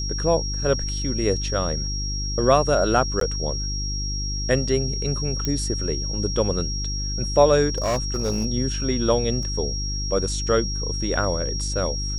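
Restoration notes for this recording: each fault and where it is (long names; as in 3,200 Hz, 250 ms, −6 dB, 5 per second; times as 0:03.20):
mains hum 50 Hz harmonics 7 −28 dBFS
whistle 5,600 Hz −29 dBFS
0:03.20–0:03.21: drop-out 13 ms
0:05.45: click −11 dBFS
0:07.69–0:08.46: clipping −18.5 dBFS
0:09.43: drop-out 2.3 ms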